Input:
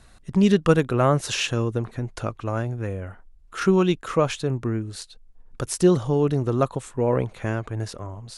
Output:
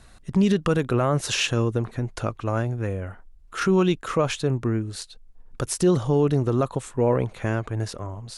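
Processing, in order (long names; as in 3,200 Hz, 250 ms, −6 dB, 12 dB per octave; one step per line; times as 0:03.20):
brickwall limiter −12.5 dBFS, peak gain reduction 7.5 dB
level +1.5 dB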